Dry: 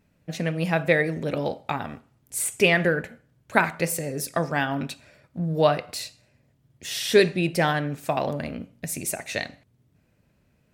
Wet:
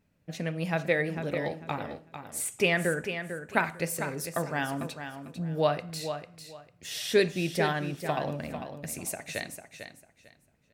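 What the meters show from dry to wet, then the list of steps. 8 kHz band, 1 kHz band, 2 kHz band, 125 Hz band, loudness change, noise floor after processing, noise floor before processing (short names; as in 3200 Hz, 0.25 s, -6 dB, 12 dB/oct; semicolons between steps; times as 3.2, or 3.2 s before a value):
-5.5 dB, -5.5 dB, -5.5 dB, -5.5 dB, -6.0 dB, -67 dBFS, -66 dBFS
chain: feedback echo 0.448 s, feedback 22%, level -9 dB; gain -6 dB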